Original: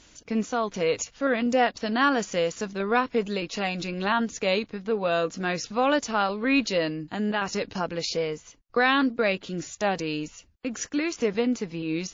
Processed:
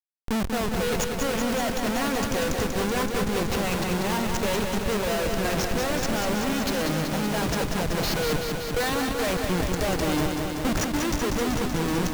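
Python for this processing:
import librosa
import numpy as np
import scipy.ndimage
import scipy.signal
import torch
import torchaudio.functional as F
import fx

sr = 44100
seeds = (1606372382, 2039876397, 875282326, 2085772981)

y = fx.schmitt(x, sr, flips_db=-32.0)
y = fx.rider(y, sr, range_db=10, speed_s=0.5)
y = fx.echo_crushed(y, sr, ms=190, feedback_pct=80, bits=9, wet_db=-5)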